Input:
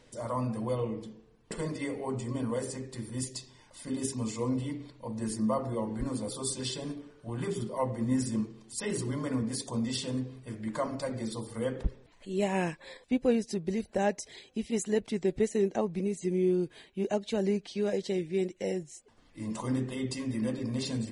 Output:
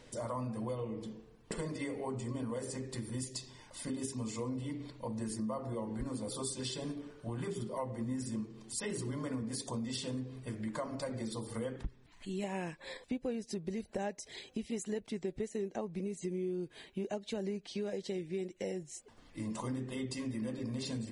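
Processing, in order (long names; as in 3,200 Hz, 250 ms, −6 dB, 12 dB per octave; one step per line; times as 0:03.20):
0:11.76–0:12.44: parametric band 520 Hz −13.5 dB 0.67 octaves
downward compressor 4 to 1, threshold −39 dBFS, peak gain reduction 15.5 dB
level +2.5 dB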